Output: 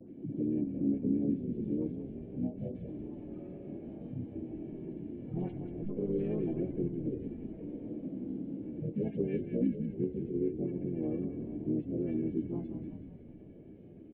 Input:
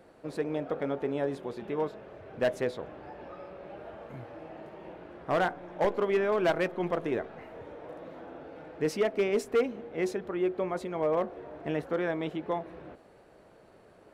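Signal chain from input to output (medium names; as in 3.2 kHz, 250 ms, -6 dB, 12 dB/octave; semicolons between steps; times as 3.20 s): harmonic-percussive separation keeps harmonic; cascade formant filter i; in parallel at -2 dB: compression 16:1, threshold -49 dBFS, peak gain reduction 16.5 dB; on the sum: tilt shelf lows +7 dB; phase dispersion highs, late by 135 ms, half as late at 2 kHz; harmony voices -5 st -4 dB, +3 st -10 dB, +5 st -17 dB; frequency-shifting echo 185 ms, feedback 50%, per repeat -37 Hz, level -9 dB; three bands compressed up and down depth 40%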